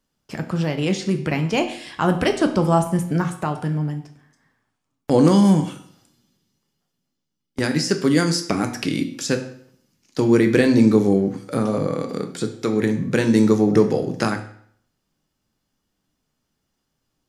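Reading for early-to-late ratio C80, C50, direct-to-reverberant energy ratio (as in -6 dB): 13.5 dB, 11.0 dB, 5.5 dB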